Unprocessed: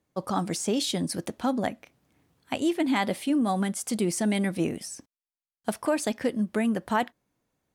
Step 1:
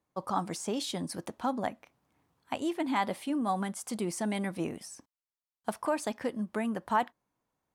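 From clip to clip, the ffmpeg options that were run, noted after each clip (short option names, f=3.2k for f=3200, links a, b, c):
-af "equalizer=f=990:w=1.4:g=8.5,volume=-7.5dB"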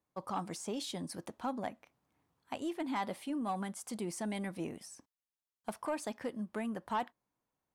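-af "asoftclip=type=tanh:threshold=-21dB,volume=-5dB"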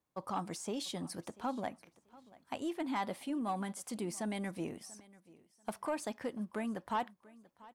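-af "aecho=1:1:688|1376:0.0841|0.0194"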